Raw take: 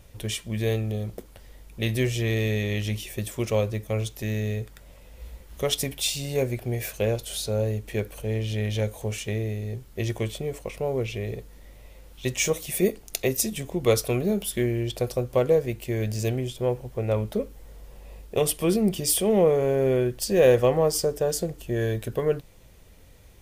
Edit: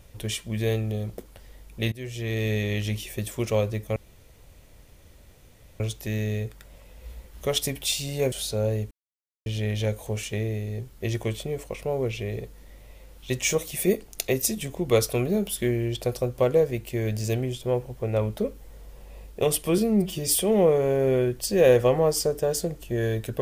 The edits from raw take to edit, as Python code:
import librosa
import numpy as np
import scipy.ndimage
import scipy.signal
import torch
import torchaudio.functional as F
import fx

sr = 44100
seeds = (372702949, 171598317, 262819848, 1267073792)

y = fx.edit(x, sr, fx.fade_in_from(start_s=1.92, length_s=0.61, floor_db=-21.0),
    fx.insert_room_tone(at_s=3.96, length_s=1.84),
    fx.cut(start_s=6.48, length_s=0.79),
    fx.silence(start_s=7.86, length_s=0.55),
    fx.stretch_span(start_s=18.73, length_s=0.33, factor=1.5), tone=tone)